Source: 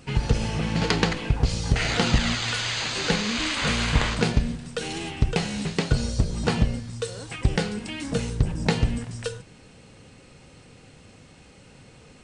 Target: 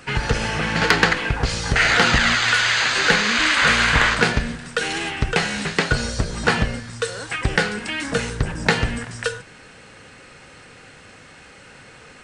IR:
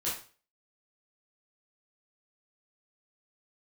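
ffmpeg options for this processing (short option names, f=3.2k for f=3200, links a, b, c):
-filter_complex "[0:a]equalizer=f=1.6k:t=o:w=0.93:g=10,acrossover=split=340[a][b];[b]acontrast=66[c];[a][c]amix=inputs=2:normalize=0,volume=-1dB"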